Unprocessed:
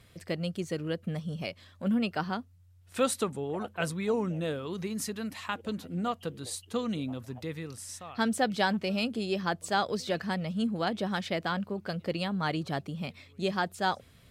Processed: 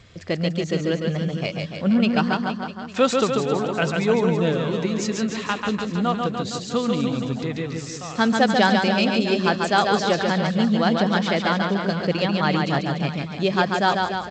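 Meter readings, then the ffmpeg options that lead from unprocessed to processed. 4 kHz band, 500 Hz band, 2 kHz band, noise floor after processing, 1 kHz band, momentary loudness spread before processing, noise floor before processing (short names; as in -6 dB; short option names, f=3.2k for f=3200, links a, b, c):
+10.5 dB, +10.5 dB, +10.5 dB, -34 dBFS, +10.5 dB, 10 LU, -58 dBFS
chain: -af "aecho=1:1:140|294|463.4|649.7|854.7:0.631|0.398|0.251|0.158|0.1,volume=8.5dB" -ar 16000 -c:a g722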